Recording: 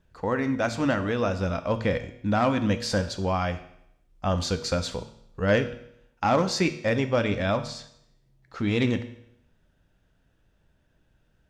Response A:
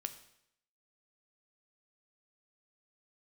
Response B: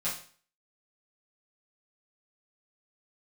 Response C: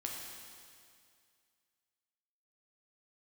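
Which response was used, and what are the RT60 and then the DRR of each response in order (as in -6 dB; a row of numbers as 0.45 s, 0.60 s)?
A; 0.75 s, 0.45 s, 2.2 s; 8.5 dB, -10.5 dB, -1.5 dB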